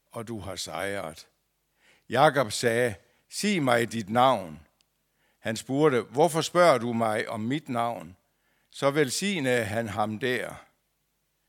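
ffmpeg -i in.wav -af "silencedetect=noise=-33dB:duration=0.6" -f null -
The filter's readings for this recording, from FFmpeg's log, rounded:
silence_start: 1.20
silence_end: 2.10 | silence_duration: 0.90
silence_start: 4.52
silence_end: 5.46 | silence_duration: 0.93
silence_start: 8.03
silence_end: 8.76 | silence_duration: 0.74
silence_start: 10.55
silence_end: 11.48 | silence_duration: 0.93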